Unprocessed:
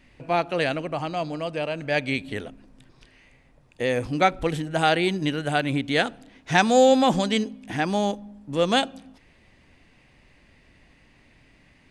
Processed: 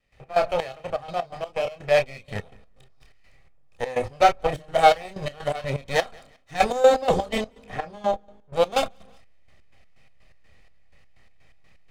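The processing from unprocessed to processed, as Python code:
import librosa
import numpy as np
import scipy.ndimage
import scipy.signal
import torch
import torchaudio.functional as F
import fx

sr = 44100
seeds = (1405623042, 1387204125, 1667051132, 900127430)

p1 = fx.lower_of_two(x, sr, delay_ms=1.6)
p2 = fx.chorus_voices(p1, sr, voices=4, hz=0.49, base_ms=29, depth_ms=1.7, mix_pct=35)
p3 = fx.high_shelf(p2, sr, hz=5200.0, db=-12.0, at=(7.65, 8.56))
p4 = p3 + fx.echo_feedback(p3, sr, ms=180, feedback_pct=34, wet_db=-24, dry=0)
p5 = fx.step_gate(p4, sr, bpm=125, pattern='.x.xx..x.x.x', floor_db=-12.0, edge_ms=4.5)
p6 = fx.small_body(p5, sr, hz=(790.0, 2200.0), ring_ms=85, db=9)
p7 = fx.backlash(p6, sr, play_db=-29.5)
p8 = p6 + (p7 * librosa.db_to_amplitude(-7.5))
y = fx.dynamic_eq(p8, sr, hz=590.0, q=1.0, threshold_db=-34.0, ratio=4.0, max_db=5)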